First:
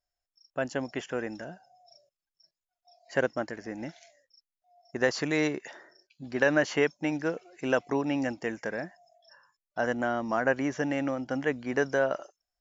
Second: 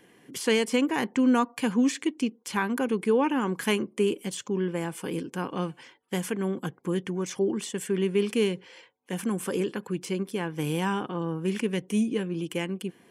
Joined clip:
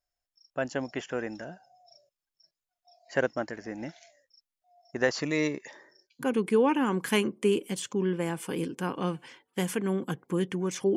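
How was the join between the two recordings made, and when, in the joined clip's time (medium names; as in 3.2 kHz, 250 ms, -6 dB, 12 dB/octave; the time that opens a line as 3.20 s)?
first
5.20–6.27 s: Shepard-style phaser falling 0.32 Hz
6.23 s: go over to second from 2.78 s, crossfade 0.08 s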